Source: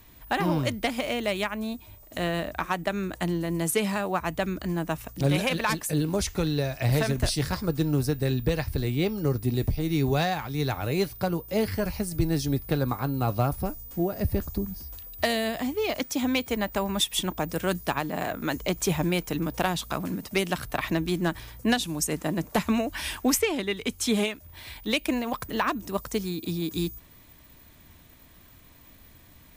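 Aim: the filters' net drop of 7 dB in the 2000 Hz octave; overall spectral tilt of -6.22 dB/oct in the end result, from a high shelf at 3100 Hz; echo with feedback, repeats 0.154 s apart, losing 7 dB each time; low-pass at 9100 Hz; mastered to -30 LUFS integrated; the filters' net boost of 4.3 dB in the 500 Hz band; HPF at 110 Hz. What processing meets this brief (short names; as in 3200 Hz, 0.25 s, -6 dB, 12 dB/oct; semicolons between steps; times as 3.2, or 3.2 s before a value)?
HPF 110 Hz; LPF 9100 Hz; bell 500 Hz +6 dB; bell 2000 Hz -7 dB; high shelf 3100 Hz -6.5 dB; feedback echo 0.154 s, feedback 45%, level -7 dB; gain -4 dB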